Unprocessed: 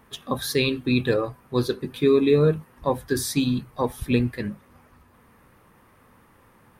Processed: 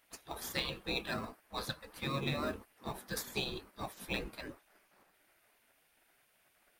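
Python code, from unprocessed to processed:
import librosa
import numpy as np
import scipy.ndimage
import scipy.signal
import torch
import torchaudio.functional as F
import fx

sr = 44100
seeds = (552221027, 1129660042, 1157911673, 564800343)

p1 = fx.spec_gate(x, sr, threshold_db=-15, keep='weak')
p2 = fx.peak_eq(p1, sr, hz=230.0, db=3.5, octaves=0.78)
p3 = fx.sample_hold(p2, sr, seeds[0], rate_hz=3300.0, jitter_pct=0)
p4 = p2 + (p3 * librosa.db_to_amplitude(-9.5))
y = p4 * librosa.db_to_amplitude(-5.0)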